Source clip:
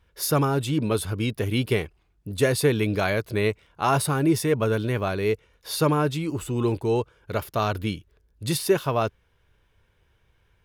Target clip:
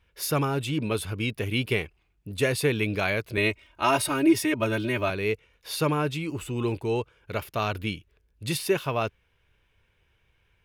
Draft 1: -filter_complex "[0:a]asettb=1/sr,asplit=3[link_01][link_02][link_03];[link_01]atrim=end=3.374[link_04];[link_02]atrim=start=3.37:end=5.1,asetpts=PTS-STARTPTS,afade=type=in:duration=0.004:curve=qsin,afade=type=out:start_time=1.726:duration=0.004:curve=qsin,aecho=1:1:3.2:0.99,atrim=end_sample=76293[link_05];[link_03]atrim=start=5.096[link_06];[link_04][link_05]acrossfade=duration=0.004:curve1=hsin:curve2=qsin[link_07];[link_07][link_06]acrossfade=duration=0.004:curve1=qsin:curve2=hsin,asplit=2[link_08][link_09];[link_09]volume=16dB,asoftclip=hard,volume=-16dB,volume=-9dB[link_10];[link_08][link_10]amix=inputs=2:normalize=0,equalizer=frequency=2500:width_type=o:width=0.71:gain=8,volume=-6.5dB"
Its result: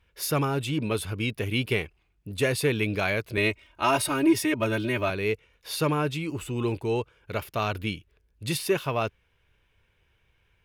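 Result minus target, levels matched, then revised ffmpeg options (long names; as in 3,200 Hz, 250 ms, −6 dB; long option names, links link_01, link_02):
gain into a clipping stage and back: distortion +25 dB
-filter_complex "[0:a]asettb=1/sr,asplit=3[link_01][link_02][link_03];[link_01]atrim=end=3.374[link_04];[link_02]atrim=start=3.37:end=5.1,asetpts=PTS-STARTPTS,afade=type=in:duration=0.004:curve=qsin,afade=type=out:start_time=1.726:duration=0.004:curve=qsin,aecho=1:1:3.2:0.99,atrim=end_sample=76293[link_05];[link_03]atrim=start=5.096[link_06];[link_04][link_05]acrossfade=duration=0.004:curve1=hsin:curve2=qsin[link_07];[link_07][link_06]acrossfade=duration=0.004:curve1=qsin:curve2=hsin,asplit=2[link_08][link_09];[link_09]volume=8.5dB,asoftclip=hard,volume=-8.5dB,volume=-9dB[link_10];[link_08][link_10]amix=inputs=2:normalize=0,equalizer=frequency=2500:width_type=o:width=0.71:gain=8,volume=-6.5dB"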